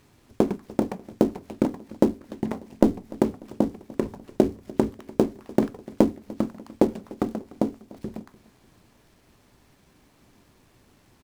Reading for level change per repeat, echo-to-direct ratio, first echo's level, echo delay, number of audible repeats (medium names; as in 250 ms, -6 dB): -6.5 dB, -20.0 dB, -21.0 dB, 296 ms, 2